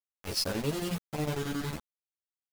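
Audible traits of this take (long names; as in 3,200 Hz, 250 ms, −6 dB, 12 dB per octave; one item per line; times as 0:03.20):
chopped level 11 Hz, depth 65%, duty 65%
a quantiser's noise floor 6 bits, dither none
a shimmering, thickened sound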